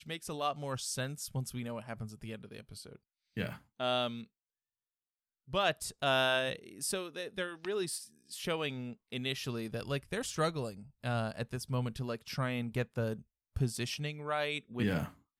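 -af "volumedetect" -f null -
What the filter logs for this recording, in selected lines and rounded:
mean_volume: -37.0 dB
max_volume: -16.7 dB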